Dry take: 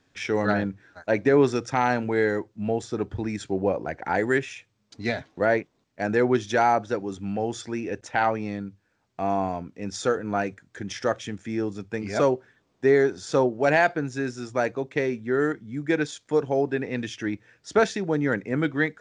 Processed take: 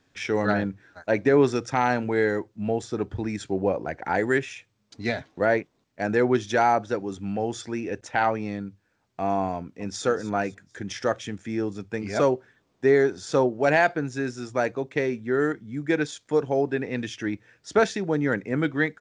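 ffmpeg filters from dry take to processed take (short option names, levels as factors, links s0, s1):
-filter_complex "[0:a]asplit=2[s0][s1];[s1]afade=t=in:st=9.55:d=0.01,afade=t=out:st=10.04:d=0.01,aecho=0:1:250|500|750|1000:0.199526|0.0798105|0.0319242|0.0127697[s2];[s0][s2]amix=inputs=2:normalize=0"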